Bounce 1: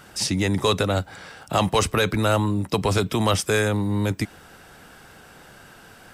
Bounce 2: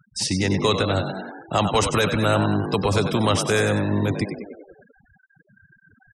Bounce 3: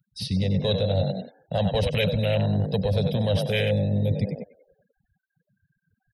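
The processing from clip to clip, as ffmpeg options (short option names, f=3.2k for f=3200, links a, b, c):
-filter_complex "[0:a]asplit=2[a][b];[b]asplit=8[c][d][e][f][g][h][i][j];[c]adelay=96,afreqshift=47,volume=-8dB[k];[d]adelay=192,afreqshift=94,volume=-12dB[l];[e]adelay=288,afreqshift=141,volume=-16dB[m];[f]adelay=384,afreqshift=188,volume=-20dB[n];[g]adelay=480,afreqshift=235,volume=-24.1dB[o];[h]adelay=576,afreqshift=282,volume=-28.1dB[p];[i]adelay=672,afreqshift=329,volume=-32.1dB[q];[j]adelay=768,afreqshift=376,volume=-36.1dB[r];[k][l][m][n][o][p][q][r]amix=inputs=8:normalize=0[s];[a][s]amix=inputs=2:normalize=0,afftfilt=real='re*gte(hypot(re,im),0.0224)':imag='im*gte(hypot(re,im),0.0224)':win_size=1024:overlap=0.75"
-af "afwtdn=0.0631,firequalizer=gain_entry='entry(180,0);entry(330,-21);entry(510,2);entry(1200,-26);entry(1900,-1);entry(3900,12);entry(7300,-17);entry(11000,11)':delay=0.05:min_phase=1,areverse,acompressor=threshold=-25dB:ratio=6,areverse,volume=5.5dB"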